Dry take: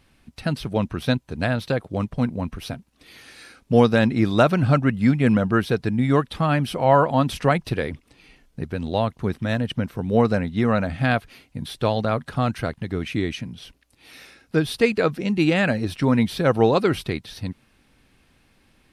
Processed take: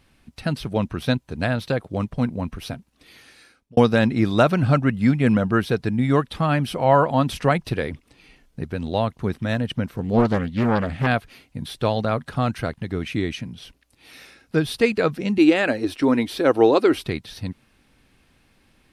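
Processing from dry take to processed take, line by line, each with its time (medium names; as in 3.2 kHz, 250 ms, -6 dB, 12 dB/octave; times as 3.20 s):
2.64–3.77 s: fade out equal-power
9.96–11.07 s: loudspeaker Doppler distortion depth 0.55 ms
15.38–17.04 s: resonant low shelf 230 Hz -8 dB, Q 3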